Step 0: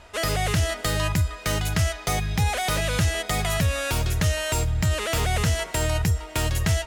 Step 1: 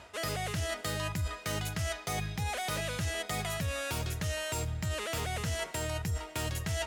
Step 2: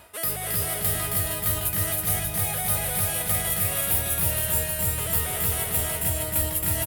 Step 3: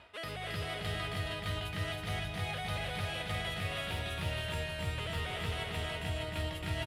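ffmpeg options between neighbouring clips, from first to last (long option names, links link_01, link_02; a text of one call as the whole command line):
ffmpeg -i in.wav -af "highpass=80,areverse,acompressor=threshold=-33dB:ratio=6,areverse,volume=1.5dB" out.wav
ffmpeg -i in.wav -filter_complex "[0:a]asplit=2[link_01][link_02];[link_02]aecho=0:1:321:0.708[link_03];[link_01][link_03]amix=inputs=2:normalize=0,aexciter=amount=11.5:drive=4.3:freq=9300,asplit=2[link_04][link_05];[link_05]aecho=0:1:270|459|591.3|683.9|748.7:0.631|0.398|0.251|0.158|0.1[link_06];[link_04][link_06]amix=inputs=2:normalize=0" out.wav
ffmpeg -i in.wav -af "lowpass=frequency=3300:width_type=q:width=1.6,volume=-7dB" out.wav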